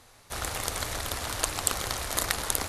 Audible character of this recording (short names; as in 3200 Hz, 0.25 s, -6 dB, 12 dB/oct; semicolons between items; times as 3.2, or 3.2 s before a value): noise floor -56 dBFS; spectral tilt -2.0 dB/oct